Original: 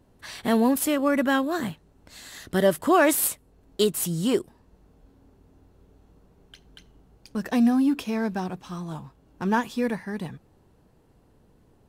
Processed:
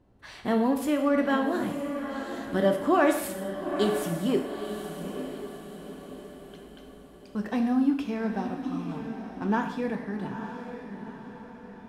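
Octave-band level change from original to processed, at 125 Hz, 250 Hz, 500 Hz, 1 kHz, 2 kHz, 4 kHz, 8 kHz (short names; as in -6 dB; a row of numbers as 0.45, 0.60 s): -2.5, -2.0, -1.5, -2.0, -3.5, -6.0, -12.5 dB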